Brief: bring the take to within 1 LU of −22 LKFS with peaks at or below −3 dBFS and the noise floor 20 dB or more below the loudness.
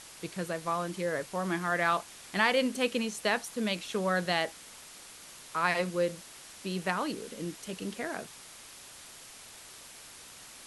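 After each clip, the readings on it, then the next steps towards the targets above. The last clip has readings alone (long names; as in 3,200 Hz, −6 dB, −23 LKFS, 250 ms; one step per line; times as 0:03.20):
background noise floor −50 dBFS; target noise floor −52 dBFS; integrated loudness −31.5 LKFS; sample peak −11.5 dBFS; target loudness −22.0 LKFS
→ broadband denoise 6 dB, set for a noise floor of −50 dBFS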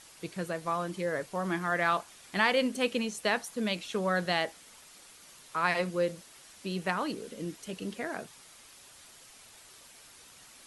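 background noise floor −55 dBFS; integrated loudness −31.5 LKFS; sample peak −11.5 dBFS; target loudness −22.0 LKFS
→ level +9.5 dB
brickwall limiter −3 dBFS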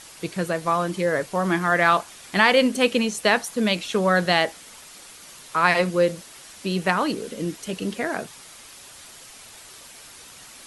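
integrated loudness −22.5 LKFS; sample peak −3.0 dBFS; background noise floor −45 dBFS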